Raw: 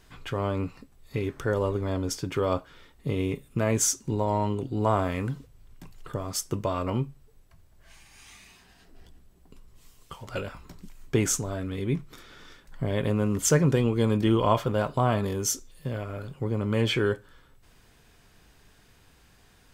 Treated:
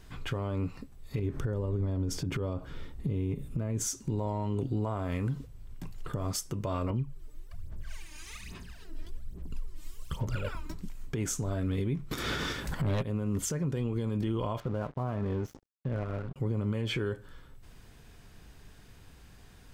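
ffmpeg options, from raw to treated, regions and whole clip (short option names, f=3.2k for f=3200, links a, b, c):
-filter_complex "[0:a]asettb=1/sr,asplit=3[a][b][c];[a]atrim=end=1.194[d];[b]atrim=start=1.19:end=3.87,asetpts=PTS-STARTPTS,afade=t=in:d=0.004:c=qsin,afade=t=out:st=2.676:d=0.004:c=qsin,lowshelf=f=480:g=9.5,acompressor=threshold=-28dB:ratio=6:attack=3.2:release=140:knee=1:detection=peak[e];[c]atrim=start=3.866[f];[d][e]acrossfade=d=0.004:c1=hsin:c2=qsin[g];[g][f]acrossfade=d=0.004:c1=qsin:c2=hsin,asettb=1/sr,asplit=3[h][i][j];[h]atrim=end=6.904[k];[i]atrim=start=6.9:end=10.74,asetpts=PTS-STARTPTS,afade=t=in:d=0.004:c=qsin,afade=t=out:st=3.836:d=0.004:c=qsin,equalizer=f=750:t=o:w=0.24:g=-8.5,aphaser=in_gain=1:out_gain=1:delay=3.3:decay=0.75:speed=1.2:type=sinusoidal[l];[j]atrim=start=10.736[m];[k][l]acrossfade=d=0.004:c1=hsin:c2=qsin[n];[n][m]acrossfade=d=0.004:c1=qsin:c2=hsin,asettb=1/sr,asplit=3[o][p][q];[o]atrim=end=12.114[r];[p]atrim=start=12.11:end=13.03,asetpts=PTS-STARTPTS,afade=t=in:d=0.004:c=qsin,afade=t=out:st=0.916:d=0.004:c=qsin,highpass=56,acontrast=62,aeval=exprs='0.376*sin(PI/2*2.51*val(0)/0.376)':c=same[s];[q]atrim=start=13.026[t];[r][s]acrossfade=d=0.004:c1=hsin:c2=qsin[u];[u][t]acrossfade=d=0.004:c1=qsin:c2=hsin,asettb=1/sr,asplit=3[v][w][x];[v]atrim=end=14.604[y];[w]atrim=start=14.6:end=16.36,asetpts=PTS-STARTPTS,afade=t=in:d=0.004:c=qsin,afade=t=out:st=1.756:d=0.004:c=qsin,lowpass=2k,aeval=exprs='sgn(val(0))*max(abs(val(0))-0.00708,0)':c=same[z];[x]atrim=start=16.356[aa];[y][z]acrossfade=d=0.004:c1=hsin:c2=qsin[ab];[ab][aa]acrossfade=d=0.004:c1=qsin:c2=hsin,lowshelf=f=270:g=7,acompressor=threshold=-23dB:ratio=6,alimiter=limit=-23dB:level=0:latency=1:release=132"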